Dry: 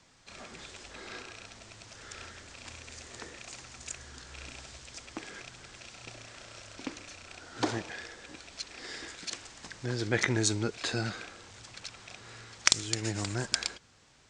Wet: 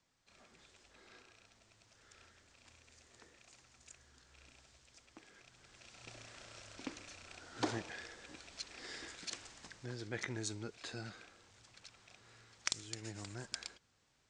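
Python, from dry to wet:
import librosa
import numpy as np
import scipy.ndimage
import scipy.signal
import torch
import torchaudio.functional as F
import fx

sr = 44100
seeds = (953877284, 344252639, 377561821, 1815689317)

y = fx.gain(x, sr, db=fx.line((5.36, -17.0), (6.16, -6.0), (9.5, -6.0), (10.05, -13.5)))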